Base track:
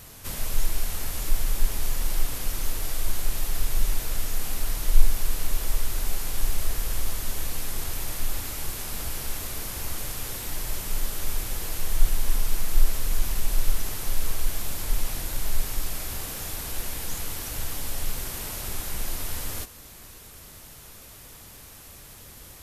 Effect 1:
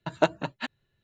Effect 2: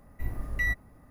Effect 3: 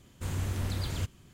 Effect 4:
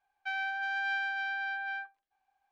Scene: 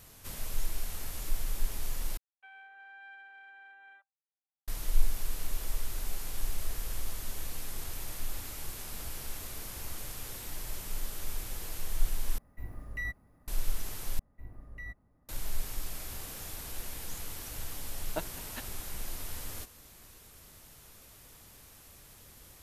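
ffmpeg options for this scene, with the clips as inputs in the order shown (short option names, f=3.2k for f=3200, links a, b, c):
-filter_complex "[2:a]asplit=2[a][b];[0:a]volume=-8.5dB[c];[4:a]afwtdn=0.0112[d];[b]highshelf=f=2.2k:g=-8[e];[1:a]aeval=exprs='val(0)*pow(10,-19*if(lt(mod(-2.9*n/s,1),2*abs(-2.9)/1000),1-mod(-2.9*n/s,1)/(2*abs(-2.9)/1000),(mod(-2.9*n/s,1)-2*abs(-2.9)/1000)/(1-2*abs(-2.9)/1000))/20)':c=same[f];[c]asplit=4[g][h][i][j];[g]atrim=end=2.174[k];[d]atrim=end=2.51,asetpts=PTS-STARTPTS,volume=-18dB[l];[h]atrim=start=4.676:end=12.384[m];[a]atrim=end=1.1,asetpts=PTS-STARTPTS,volume=-8.5dB[n];[i]atrim=start=13.476:end=14.194[o];[e]atrim=end=1.1,asetpts=PTS-STARTPTS,volume=-13.5dB[p];[j]atrim=start=15.286[q];[f]atrim=end=1.03,asetpts=PTS-STARTPTS,volume=-8.5dB,afade=t=in:d=0.004:c=hsin,afade=t=out:st=1.026:d=0.004:c=hsin,adelay=17940[r];[k][l]acrossfade=d=0.004:c1=hsin:c2=hsin[s];[s][m]acrossfade=d=0.004:c1=hsin:c2=hsin[t];[t][n]acrossfade=d=0.004:c1=hsin:c2=hsin[u];[u][o]acrossfade=d=0.004:c1=hsin:c2=hsin[v];[v][p]acrossfade=d=0.004:c1=hsin:c2=hsin[w];[w][q]acrossfade=d=0.004:c1=hsin:c2=hsin[x];[x][r]amix=inputs=2:normalize=0"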